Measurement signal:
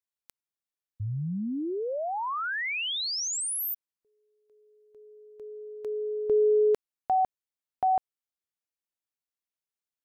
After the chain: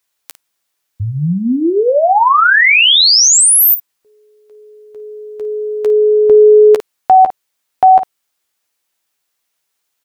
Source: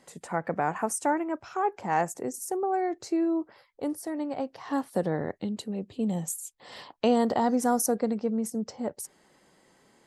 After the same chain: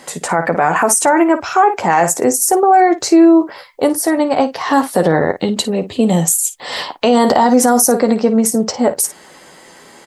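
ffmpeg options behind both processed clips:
ffmpeg -i in.wav -filter_complex "[0:a]lowshelf=frequency=350:gain=-9,asplit=2[link_01][link_02];[link_02]aecho=0:1:12|54:0.376|0.2[link_03];[link_01][link_03]amix=inputs=2:normalize=0,alimiter=level_in=23dB:limit=-1dB:release=50:level=0:latency=1,volume=-1dB" out.wav

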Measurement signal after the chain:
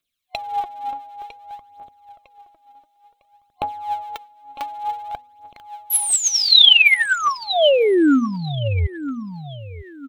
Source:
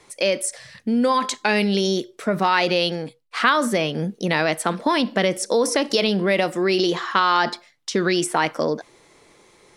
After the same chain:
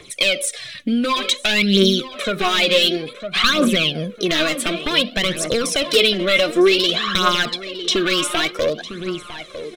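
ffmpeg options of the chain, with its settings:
ffmpeg -i in.wav -filter_complex "[0:a]asplit=2[link_01][link_02];[link_02]acompressor=threshold=-28dB:ratio=6,volume=2dB[link_03];[link_01][link_03]amix=inputs=2:normalize=0,aeval=exprs='0.299*(abs(mod(val(0)/0.299+3,4)-2)-1)':channel_layout=same,bandreject=frequency=249.7:width_type=h:width=4,bandreject=frequency=499.4:width_type=h:width=4,asplit=2[link_04][link_05];[link_05]adelay=954,lowpass=frequency=2900:poles=1,volume=-11dB,asplit=2[link_06][link_07];[link_07]adelay=954,lowpass=frequency=2900:poles=1,volume=0.37,asplit=2[link_08][link_09];[link_09]adelay=954,lowpass=frequency=2900:poles=1,volume=0.37,asplit=2[link_10][link_11];[link_11]adelay=954,lowpass=frequency=2900:poles=1,volume=0.37[link_12];[link_06][link_08][link_10][link_12]amix=inputs=4:normalize=0[link_13];[link_04][link_13]amix=inputs=2:normalize=0,aphaser=in_gain=1:out_gain=1:delay=3.8:decay=0.64:speed=0.55:type=triangular,superequalizer=9b=0.282:12b=2.24:13b=3.16,volume=-3dB" out.wav

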